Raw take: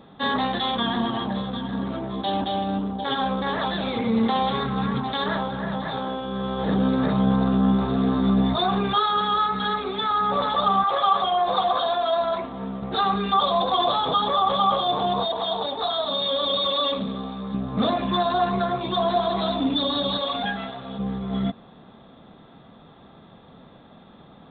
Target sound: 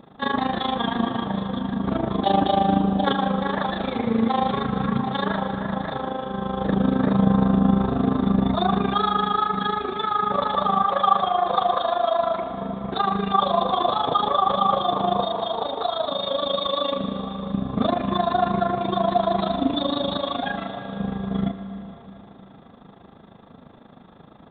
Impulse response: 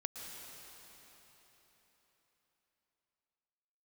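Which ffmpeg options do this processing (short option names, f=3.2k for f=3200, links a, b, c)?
-filter_complex "[0:a]asettb=1/sr,asplit=3[a][b][c];[a]atrim=end=1.864[d];[b]atrim=start=1.86:end=3.12,asetpts=PTS-STARTPTS,afade=t=in:d=0.004:c=qsin,afade=t=out:st=1.256:d=0.004:c=qsin,acontrast=38[e];[c]atrim=start=3.116[f];[d][e]acrossfade=d=0.004:c1=hsin:c2=qsin[g];[g][f]acrossfade=d=0.004:c1=qsin:c2=hsin,tremolo=f=26:d=0.857,asplit=2[h][i];[1:a]atrim=start_sample=2205,asetrate=52920,aresample=44100,lowpass=2.5k[j];[i][j]afir=irnorm=-1:irlink=0,volume=0.5dB[k];[h][k]amix=inputs=2:normalize=0"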